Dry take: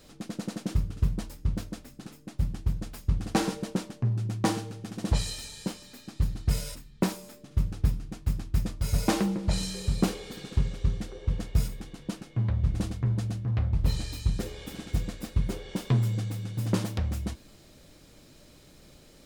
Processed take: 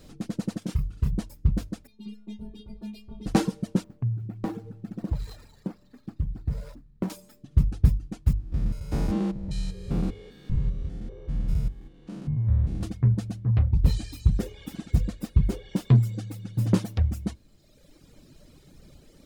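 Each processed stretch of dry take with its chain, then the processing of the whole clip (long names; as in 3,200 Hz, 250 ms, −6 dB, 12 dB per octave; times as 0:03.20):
0:00.59–0:01.11: low-shelf EQ 500 Hz −6.5 dB + double-tracking delay 27 ms −4 dB
0:01.87–0:03.26: drawn EQ curve 170 Hz 0 dB, 380 Hz +14 dB, 570 Hz +6 dB, 870 Hz 0 dB, 1,400 Hz −25 dB, 2,400 Hz +7 dB, 3,900 Hz +10 dB, 6,500 Hz −9 dB, 10,000 Hz −5 dB, 16,000 Hz −16 dB + leveller curve on the samples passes 3 + stiff-string resonator 210 Hz, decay 0.72 s, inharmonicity 0.008
0:03.84–0:07.10: running median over 15 samples + downward compressor 2 to 1, threshold −34 dBFS
0:08.33–0:12.83: spectrum averaged block by block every 200 ms + high-shelf EQ 4,000 Hz −9.5 dB
whole clip: reverb reduction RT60 1.5 s; low-shelf EQ 350 Hz +9.5 dB; mains-hum notches 50/100 Hz; level −1 dB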